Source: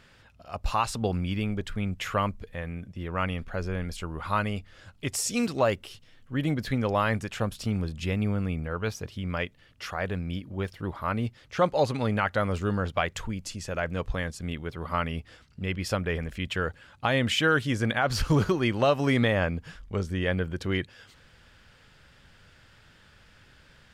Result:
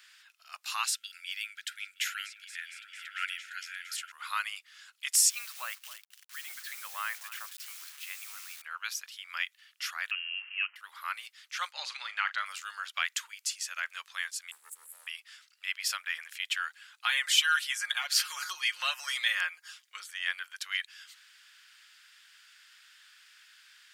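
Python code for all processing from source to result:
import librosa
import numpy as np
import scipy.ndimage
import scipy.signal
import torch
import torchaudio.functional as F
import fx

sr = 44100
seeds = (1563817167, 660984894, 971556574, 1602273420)

y = fx.chain(x, sr, fx.brickwall_bandstop(low_hz=330.0, high_hz=1300.0),
    fx.echo_opening(ms=230, hz=200, octaves=1, feedback_pct=70, wet_db=0), at=(0.86, 4.12))
y = fx.chain(y, sr, fx.lowpass(hz=1200.0, slope=6),
    fx.quant_dither(seeds[0], bits=8, dither='none'),
    fx.echo_single(ms=267, db=-15.0), at=(5.3, 8.62))
y = fx.chain(y, sr, fx.crossing_spikes(level_db=-28.0),
    fx.highpass(hz=260.0, slope=12),
    fx.freq_invert(carrier_hz=3000), at=(10.11, 10.76))
y = fx.chain(y, sr, fx.lowpass(hz=5100.0, slope=12),
    fx.doubler(ms=39.0, db=-13.5), at=(11.72, 12.46))
y = fx.chain(y, sr, fx.cheby1_bandstop(low_hz=510.0, high_hz=7600.0, order=5),
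    fx.peak_eq(hz=7100.0, db=11.5, octaves=1.3),
    fx.leveller(passes=2), at=(14.51, 15.07))
y = fx.chain(y, sr, fx.comb(ms=5.6, depth=0.66),
    fx.filter_lfo_notch(shape='saw_down', hz=1.7, low_hz=660.0, high_hz=7400.0, q=2.2), at=(17.05, 20.11))
y = scipy.signal.sosfilt(scipy.signal.butter(4, 1300.0, 'highpass', fs=sr, output='sos'), y)
y = fx.tilt_eq(y, sr, slope=3.0)
y = y * 10.0 ** (-2.0 / 20.0)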